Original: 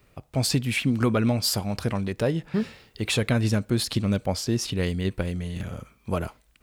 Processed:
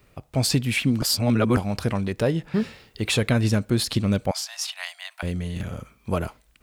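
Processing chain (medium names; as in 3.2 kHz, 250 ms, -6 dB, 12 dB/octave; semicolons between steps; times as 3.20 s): 1.02–1.57 s: reverse; 4.31–5.23 s: steep high-pass 650 Hz 96 dB/octave; trim +2 dB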